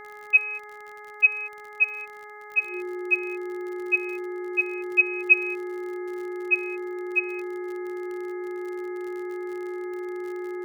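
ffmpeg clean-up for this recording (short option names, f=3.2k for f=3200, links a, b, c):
-af "adeclick=t=4,bandreject=f=419:t=h:w=4,bandreject=f=838:t=h:w=4,bandreject=f=1.257k:t=h:w=4,bandreject=f=1.676k:t=h:w=4,bandreject=f=2.095k:t=h:w=4,bandreject=f=360:w=30"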